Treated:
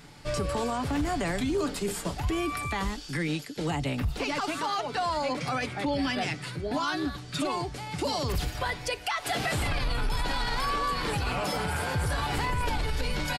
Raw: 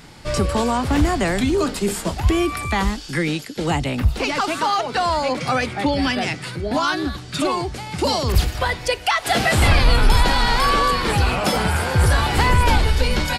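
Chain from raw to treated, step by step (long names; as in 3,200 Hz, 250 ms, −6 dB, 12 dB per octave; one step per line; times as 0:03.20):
comb filter 6.9 ms, depth 34%
brickwall limiter −13 dBFS, peak gain reduction 10 dB
level −7.5 dB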